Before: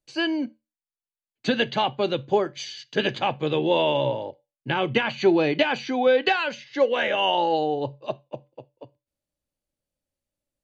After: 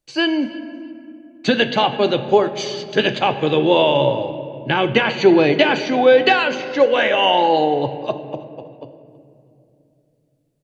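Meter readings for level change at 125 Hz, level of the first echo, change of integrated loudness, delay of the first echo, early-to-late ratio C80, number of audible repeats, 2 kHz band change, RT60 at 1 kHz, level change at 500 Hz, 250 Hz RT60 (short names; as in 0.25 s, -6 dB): +6.5 dB, -21.5 dB, +7.0 dB, 0.324 s, 12.0 dB, 2, +7.0 dB, 2.2 s, +7.5 dB, 3.9 s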